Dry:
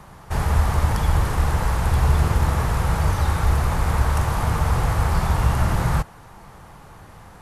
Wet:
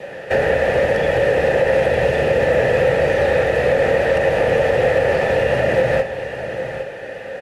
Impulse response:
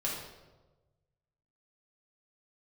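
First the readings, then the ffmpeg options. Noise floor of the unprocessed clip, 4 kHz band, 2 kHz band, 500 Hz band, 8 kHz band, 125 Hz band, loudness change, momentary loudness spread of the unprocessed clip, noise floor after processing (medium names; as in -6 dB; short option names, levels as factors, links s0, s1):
-45 dBFS, +4.5 dB, +11.0 dB, +19.0 dB, no reading, -7.0 dB, +4.5 dB, 3 LU, -32 dBFS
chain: -filter_complex "[0:a]adynamicequalizer=threshold=0.00398:dfrequency=1500:dqfactor=5.8:tfrequency=1500:tqfactor=5.8:attack=5:release=100:ratio=0.375:range=3:mode=cutabove:tftype=bell,acrossover=split=87|1700[s0][s1][s2];[s0]acompressor=threshold=0.0501:ratio=4[s3];[s1]acompressor=threshold=0.0562:ratio=4[s4];[s2]acompressor=threshold=0.00708:ratio=4[s5];[s3][s4][s5]amix=inputs=3:normalize=0,asplit=3[s6][s7][s8];[s6]bandpass=f=530:t=q:w=8,volume=1[s9];[s7]bandpass=f=1840:t=q:w=8,volume=0.501[s10];[s8]bandpass=f=2480:t=q:w=8,volume=0.355[s11];[s9][s10][s11]amix=inputs=3:normalize=0,aecho=1:1:802:0.299,asplit=2[s12][s13];[1:a]atrim=start_sample=2205,atrim=end_sample=3087[s14];[s13][s14]afir=irnorm=-1:irlink=0,volume=0.376[s15];[s12][s15]amix=inputs=2:normalize=0,alimiter=level_in=35.5:limit=0.891:release=50:level=0:latency=1,volume=0.531" -ar 32000 -c:a libmp3lame -b:a 56k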